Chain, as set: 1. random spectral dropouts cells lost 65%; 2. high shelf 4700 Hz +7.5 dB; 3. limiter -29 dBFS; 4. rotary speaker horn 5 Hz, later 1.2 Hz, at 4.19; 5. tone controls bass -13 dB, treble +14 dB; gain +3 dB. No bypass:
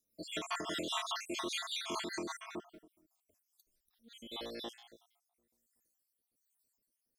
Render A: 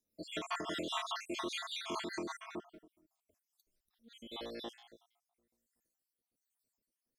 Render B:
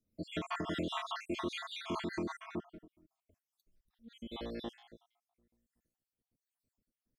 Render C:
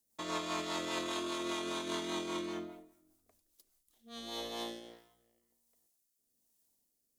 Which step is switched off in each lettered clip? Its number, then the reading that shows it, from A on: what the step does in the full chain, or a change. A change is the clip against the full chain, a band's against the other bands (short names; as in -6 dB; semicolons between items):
2, 8 kHz band -5.0 dB; 5, crest factor change -2.5 dB; 1, 250 Hz band +4.0 dB